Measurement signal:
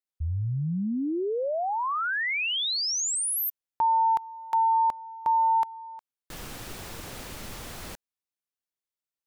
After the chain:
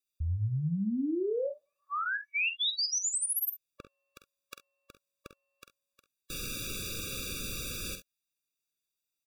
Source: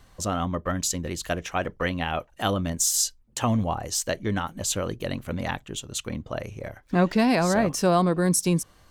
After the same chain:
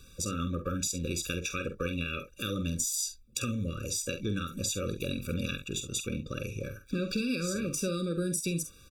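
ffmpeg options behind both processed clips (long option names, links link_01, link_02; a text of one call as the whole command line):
ffmpeg -i in.wav -af "highshelf=frequency=2200:width_type=q:width=1.5:gain=7.5,bandreject=frequency=1400:width=26,acompressor=threshold=-29dB:ratio=6:attack=12:release=145:knee=6:detection=peak,aecho=1:1:47|67:0.355|0.15,afftfilt=real='re*eq(mod(floor(b*sr/1024/560),2),0)':imag='im*eq(mod(floor(b*sr/1024/560),2),0)':win_size=1024:overlap=0.75" out.wav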